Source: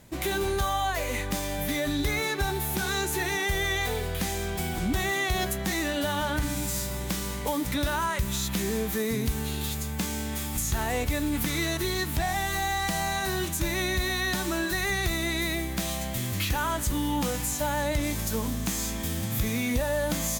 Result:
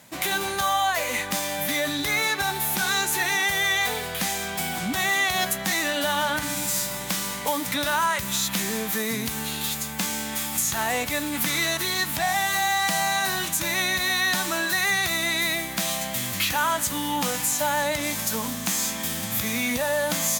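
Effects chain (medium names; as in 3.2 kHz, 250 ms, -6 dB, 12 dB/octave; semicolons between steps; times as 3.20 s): high-pass 230 Hz 12 dB/octave; peaking EQ 370 Hz -11.5 dB 0.87 oct; trim +6.5 dB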